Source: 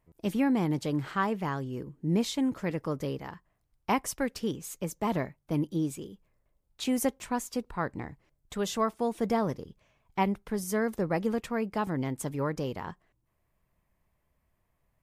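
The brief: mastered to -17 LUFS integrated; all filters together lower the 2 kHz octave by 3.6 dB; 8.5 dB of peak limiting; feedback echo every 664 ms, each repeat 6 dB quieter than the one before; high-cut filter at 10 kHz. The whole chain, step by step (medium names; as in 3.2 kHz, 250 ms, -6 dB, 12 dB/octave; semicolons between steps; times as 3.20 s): low-pass 10 kHz; peaking EQ 2 kHz -4.5 dB; peak limiter -22.5 dBFS; feedback delay 664 ms, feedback 50%, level -6 dB; trim +16.5 dB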